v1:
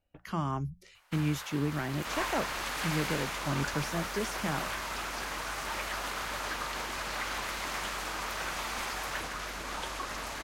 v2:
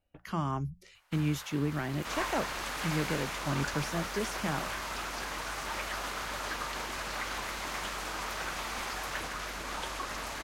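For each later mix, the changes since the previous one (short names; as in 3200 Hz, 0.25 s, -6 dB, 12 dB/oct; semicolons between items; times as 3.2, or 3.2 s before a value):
first sound -3.5 dB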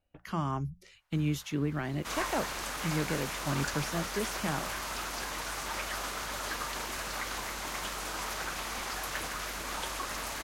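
first sound -10.0 dB; second sound: add high shelf 7800 Hz +9.5 dB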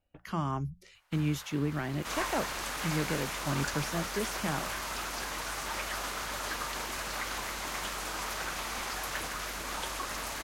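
first sound +8.0 dB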